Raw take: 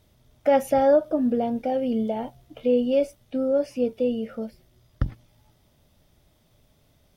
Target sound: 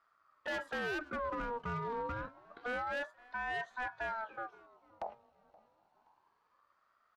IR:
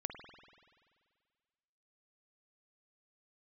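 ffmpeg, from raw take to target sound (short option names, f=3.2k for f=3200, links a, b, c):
-af "adynamicsmooth=sensitivity=2.5:basefreq=3.3k,aeval=exprs='0.141*(cos(1*acos(clip(val(0)/0.141,-1,1)))-cos(1*PI/2))+0.01*(cos(7*acos(clip(val(0)/0.141,-1,1)))-cos(7*PI/2))':c=same,asoftclip=type=tanh:threshold=-29.5dB,aecho=1:1:524|1048|1572:0.0708|0.0311|0.0137,aeval=exprs='val(0)*sin(2*PI*980*n/s+980*0.3/0.28*sin(2*PI*0.28*n/s))':c=same,volume=-3dB"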